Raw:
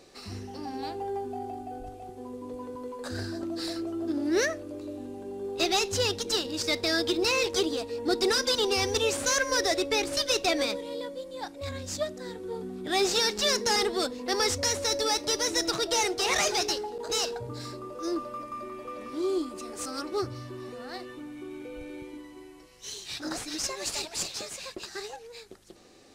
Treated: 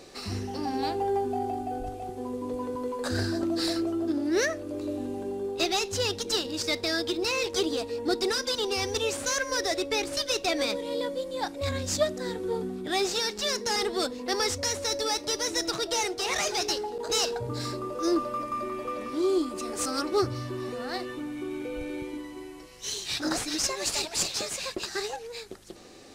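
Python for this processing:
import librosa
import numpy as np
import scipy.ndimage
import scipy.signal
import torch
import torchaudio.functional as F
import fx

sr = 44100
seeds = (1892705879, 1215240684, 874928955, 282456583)

y = fx.rider(x, sr, range_db=5, speed_s=0.5)
y = y * librosa.db_to_amplitude(1.0)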